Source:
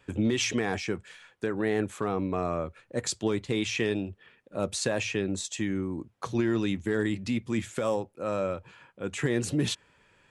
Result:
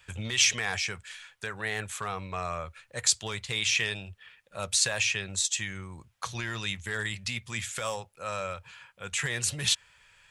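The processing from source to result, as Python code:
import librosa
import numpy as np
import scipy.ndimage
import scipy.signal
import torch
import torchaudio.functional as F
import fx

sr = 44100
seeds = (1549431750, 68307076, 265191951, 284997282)

y = fx.tone_stack(x, sr, knobs='10-0-10')
y = F.gain(torch.from_numpy(y), 9.0).numpy()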